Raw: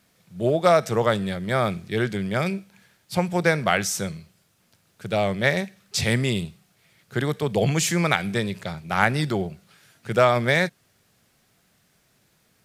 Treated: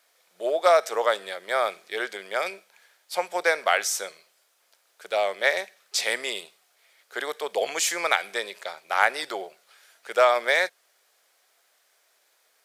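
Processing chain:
high-pass filter 490 Hz 24 dB per octave
notch filter 2,700 Hz, Q 27

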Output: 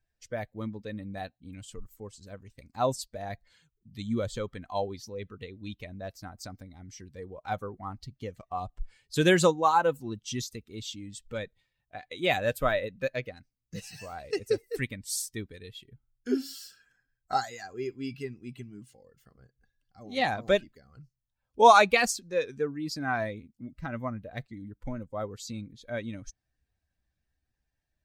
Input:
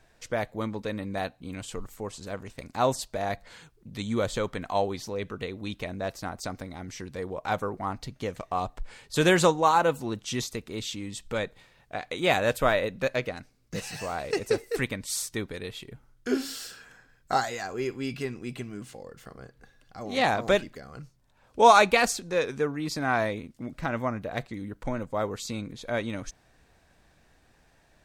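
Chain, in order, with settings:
spectral dynamics exaggerated over time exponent 1.5
level +1 dB

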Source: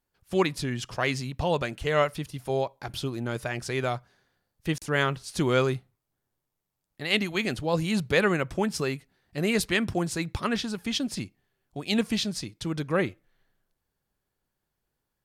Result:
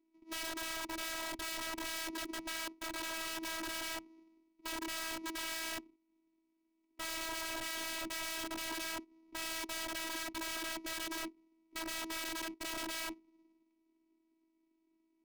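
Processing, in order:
samples sorted by size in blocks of 128 samples
formant filter u
high-shelf EQ 2,900 Hz +6.5 dB
brickwall limiter −36 dBFS, peak gain reduction 12.5 dB
notch filter 880 Hz, Q 12
in parallel at +0.5 dB: downward compressor 5 to 1, threshold −54 dBFS, peak gain reduction 13 dB
on the sum: parametric band 210 Hz +11.5 dB 0.81 octaves
wrap-around overflow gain 42 dB
phases set to zero 325 Hz
level +8.5 dB

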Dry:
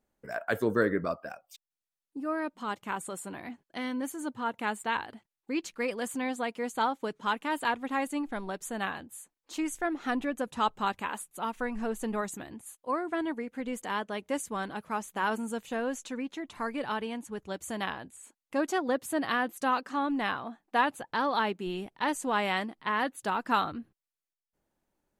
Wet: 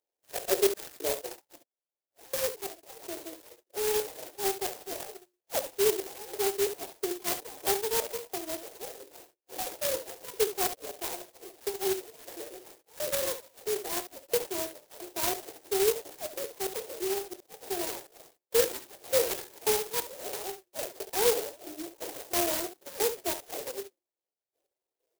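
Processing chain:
phase-vocoder pitch shift with formants kept +9 semitones
mains-hum notches 60/120/180/240/300/360 Hz
auto-filter high-pass square 1.5 Hz 400–3,300 Hz
on a send: ambience of single reflections 23 ms −11 dB, 68 ms −11 dB
on the sum: sample-rate reduction 3,400 Hz, jitter 0%
high-pass filter 250 Hz 24 dB per octave
high-shelf EQ 4,700 Hz +7.5 dB
phaser with its sweep stopped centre 530 Hz, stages 4
converter with an unsteady clock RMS 0.13 ms

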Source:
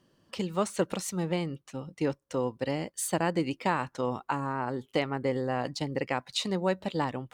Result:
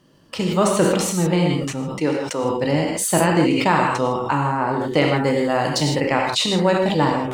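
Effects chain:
0:01.90–0:02.43: high-pass filter 240 Hz → 510 Hz 6 dB per octave
0:05.16–0:05.96: high-shelf EQ 5,200 Hz +11 dB
reverb whose tail is shaped and stops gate 180 ms flat, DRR 1 dB
level that may fall only so fast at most 41 dB per second
level +8.5 dB

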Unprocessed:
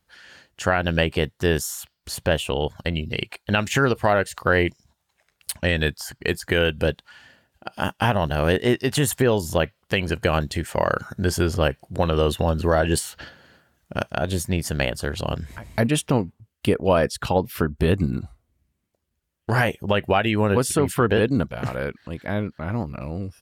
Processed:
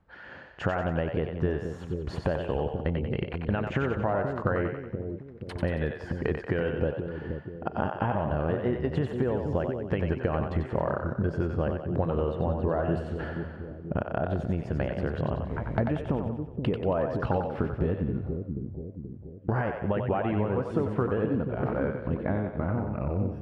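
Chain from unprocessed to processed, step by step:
low-pass filter 1,200 Hz 12 dB per octave
downward compressor 5 to 1, threshold −34 dBFS, peak gain reduction 17.5 dB
echo with a time of its own for lows and highs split 450 Hz, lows 480 ms, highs 92 ms, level −5 dB
level +7.5 dB

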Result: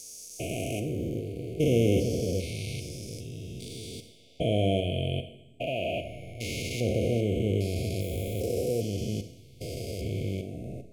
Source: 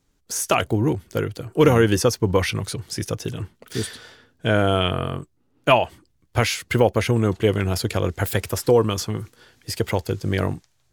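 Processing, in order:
spectrum averaged block by block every 400 ms
linear-phase brick-wall band-stop 740–2,100 Hz
four-comb reverb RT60 0.81 s, combs from 30 ms, DRR 8.5 dB
level −4.5 dB

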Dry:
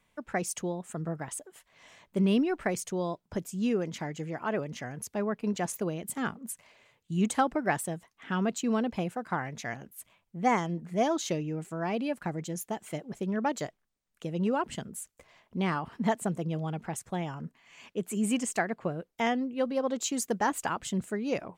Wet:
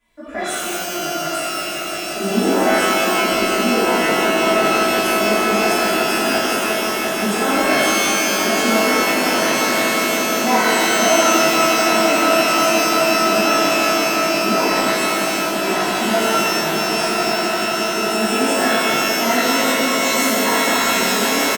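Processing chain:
comb filter 3 ms, depth 75%
on a send: echo that builds up and dies away 174 ms, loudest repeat 8, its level −10.5 dB
on the sum: reverb with rising layers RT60 1.9 s, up +12 semitones, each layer −2 dB, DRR −12 dB
level −5.5 dB

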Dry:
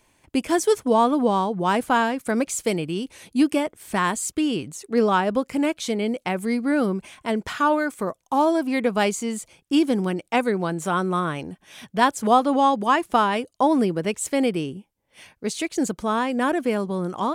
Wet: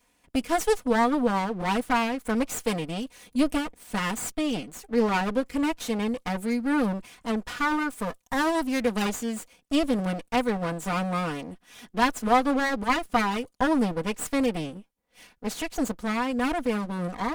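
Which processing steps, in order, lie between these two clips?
lower of the sound and its delayed copy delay 4.1 ms
0:07.92–0:09.02: high-shelf EQ 4,000 Hz +6.5 dB
level −3 dB

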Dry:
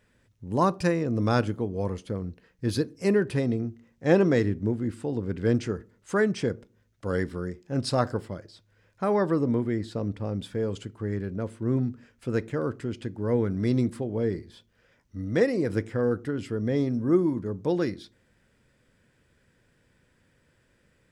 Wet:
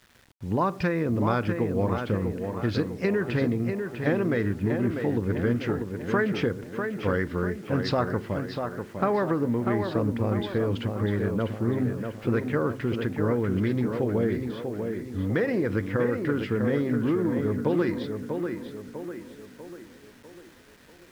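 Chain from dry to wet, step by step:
in parallel at −1 dB: brickwall limiter −17.5 dBFS, peak gain reduction 10.5 dB
on the sum: high-frequency loss of the air 210 metres
hum removal 132.1 Hz, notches 2
downward compressor 16 to 1, threshold −22 dBFS, peak gain reduction 11.5 dB
parametric band 2,000 Hz +6.5 dB 2.3 octaves
on a send: tape delay 646 ms, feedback 53%, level −4.5 dB, low-pass 2,700 Hz
on the sum: bit reduction 9 bits
highs frequency-modulated by the lows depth 0.11 ms

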